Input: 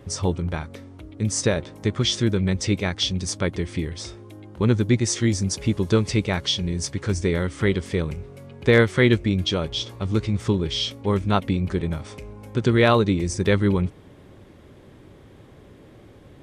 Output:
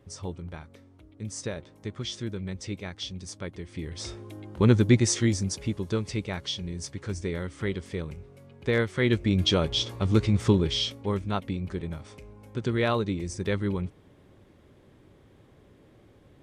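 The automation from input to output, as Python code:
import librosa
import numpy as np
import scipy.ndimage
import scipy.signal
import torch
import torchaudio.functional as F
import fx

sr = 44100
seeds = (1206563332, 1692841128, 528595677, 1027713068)

y = fx.gain(x, sr, db=fx.line((3.69, -12.5), (4.1, 0.0), (4.98, 0.0), (5.84, -9.0), (8.94, -9.0), (9.45, 0.5), (10.57, 0.5), (11.29, -8.5)))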